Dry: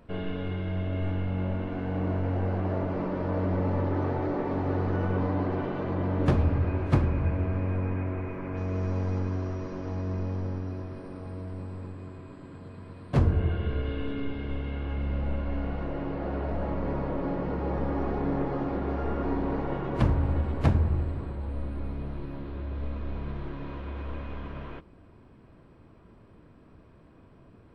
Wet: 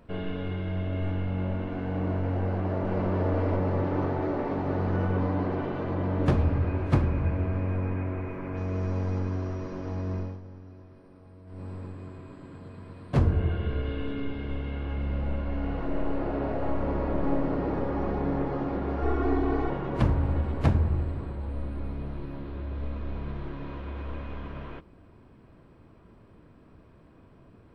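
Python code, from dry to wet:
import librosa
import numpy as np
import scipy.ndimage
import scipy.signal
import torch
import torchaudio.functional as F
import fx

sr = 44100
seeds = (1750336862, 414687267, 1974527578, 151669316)

y = fx.echo_throw(x, sr, start_s=2.35, length_s=0.72, ms=490, feedback_pct=70, wet_db=-1.5)
y = fx.reverb_throw(y, sr, start_s=15.57, length_s=2.12, rt60_s=2.5, drr_db=2.5)
y = fx.comb(y, sr, ms=2.7, depth=0.94, at=(19.02, 19.7))
y = fx.edit(y, sr, fx.fade_down_up(start_s=10.17, length_s=1.51, db=-12.5, fade_s=0.23), tone=tone)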